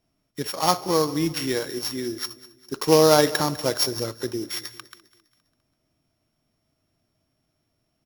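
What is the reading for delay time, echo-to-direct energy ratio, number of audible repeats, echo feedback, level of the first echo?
201 ms, -18.0 dB, 3, 45%, -19.0 dB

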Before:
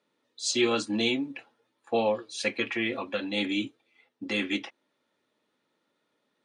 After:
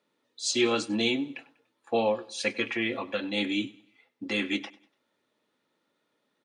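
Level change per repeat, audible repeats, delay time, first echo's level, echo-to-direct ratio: -8.0 dB, 2, 97 ms, -21.0 dB, -20.5 dB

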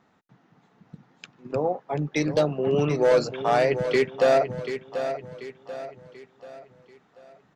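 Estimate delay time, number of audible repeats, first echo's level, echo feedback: 737 ms, 4, -9.5 dB, 42%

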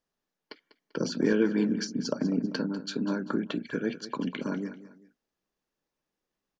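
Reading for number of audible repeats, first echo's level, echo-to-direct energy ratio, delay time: 2, -15.0 dB, -14.5 dB, 196 ms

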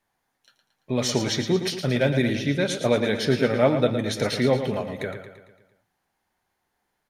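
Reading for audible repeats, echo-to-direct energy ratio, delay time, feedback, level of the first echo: 5, -7.5 dB, 113 ms, 53%, -9.0 dB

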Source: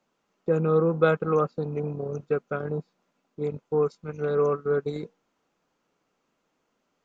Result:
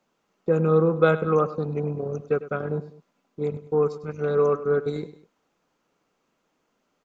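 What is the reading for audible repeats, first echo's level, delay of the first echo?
2, -15.0 dB, 101 ms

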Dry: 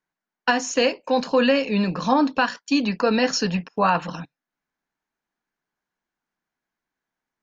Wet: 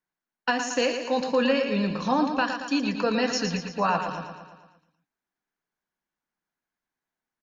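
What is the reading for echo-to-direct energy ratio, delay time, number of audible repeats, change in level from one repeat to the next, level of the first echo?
-6.0 dB, 114 ms, 6, -5.0 dB, -7.5 dB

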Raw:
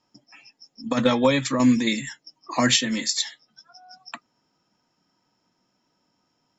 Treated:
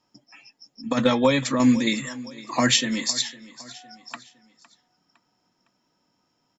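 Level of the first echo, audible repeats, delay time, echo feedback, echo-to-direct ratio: -19.0 dB, 3, 509 ms, 43%, -18.0 dB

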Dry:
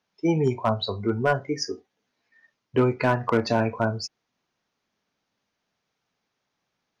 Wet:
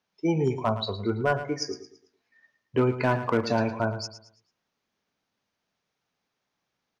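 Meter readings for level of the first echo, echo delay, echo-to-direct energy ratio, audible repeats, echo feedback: -12.0 dB, 111 ms, -11.5 dB, 3, 35%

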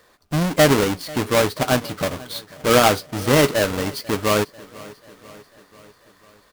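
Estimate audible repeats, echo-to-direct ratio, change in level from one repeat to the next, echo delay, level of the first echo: 4, -19.0 dB, -4.5 dB, 492 ms, -21.0 dB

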